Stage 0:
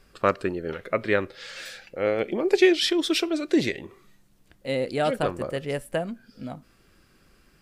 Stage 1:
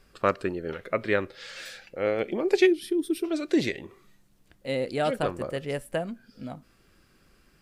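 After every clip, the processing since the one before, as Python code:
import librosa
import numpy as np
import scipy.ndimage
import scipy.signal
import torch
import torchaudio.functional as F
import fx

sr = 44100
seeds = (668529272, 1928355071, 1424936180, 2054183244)

y = fx.spec_box(x, sr, start_s=2.67, length_s=0.58, low_hz=450.0, high_hz=8400.0, gain_db=-17)
y = F.gain(torch.from_numpy(y), -2.0).numpy()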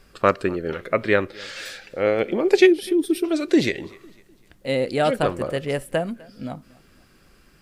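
y = fx.echo_feedback(x, sr, ms=252, feedback_pct=39, wet_db=-23.5)
y = F.gain(torch.from_numpy(y), 6.0).numpy()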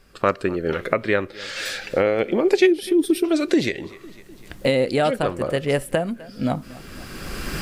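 y = fx.recorder_agc(x, sr, target_db=-8.0, rise_db_per_s=18.0, max_gain_db=30)
y = F.gain(torch.from_numpy(y), -2.0).numpy()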